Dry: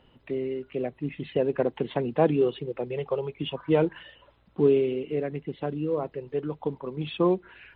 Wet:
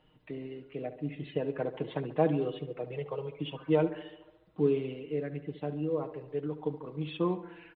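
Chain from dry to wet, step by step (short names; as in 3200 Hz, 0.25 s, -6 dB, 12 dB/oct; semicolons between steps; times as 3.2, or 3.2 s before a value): comb 6.5 ms, depth 63%; on a send: tape echo 70 ms, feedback 68%, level -12 dB, low-pass 2500 Hz; on the sum: gain -7.5 dB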